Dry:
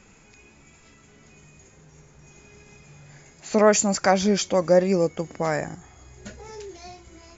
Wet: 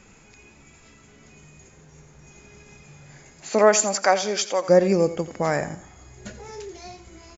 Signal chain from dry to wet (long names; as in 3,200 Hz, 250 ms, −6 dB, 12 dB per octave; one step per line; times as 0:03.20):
0:03.49–0:04.68: high-pass filter 270 Hz → 650 Hz 12 dB per octave
on a send: repeating echo 86 ms, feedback 33%, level −14.5 dB
on the sum: level +1.5 dB